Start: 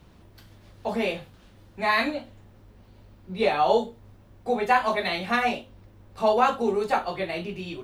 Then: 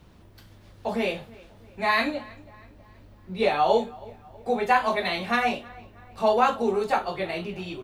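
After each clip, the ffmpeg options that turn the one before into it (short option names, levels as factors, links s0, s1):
-filter_complex "[0:a]asplit=2[s0][s1];[s1]adelay=322,lowpass=f=3300:p=1,volume=0.0794,asplit=2[s2][s3];[s3]adelay=322,lowpass=f=3300:p=1,volume=0.51,asplit=2[s4][s5];[s5]adelay=322,lowpass=f=3300:p=1,volume=0.51,asplit=2[s6][s7];[s7]adelay=322,lowpass=f=3300:p=1,volume=0.51[s8];[s0][s2][s4][s6][s8]amix=inputs=5:normalize=0"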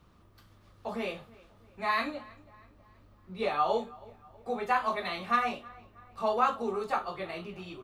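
-af "equalizer=f=1200:t=o:w=0.26:g=12,volume=0.376"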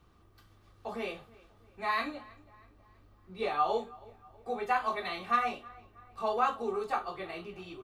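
-af "aecho=1:1:2.6:0.31,volume=0.75"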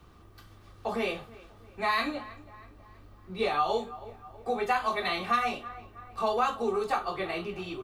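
-filter_complex "[0:a]acrossover=split=170|3000[s0][s1][s2];[s1]acompressor=threshold=0.0178:ratio=2.5[s3];[s0][s3][s2]amix=inputs=3:normalize=0,volume=2.51"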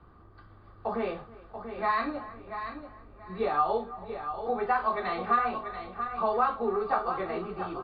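-af "highshelf=f=2000:t=q:w=1.5:g=-9.5,aecho=1:1:686|1372|2058:0.355|0.0887|0.0222" -ar 11025 -c:a libmp3lame -b:a 32k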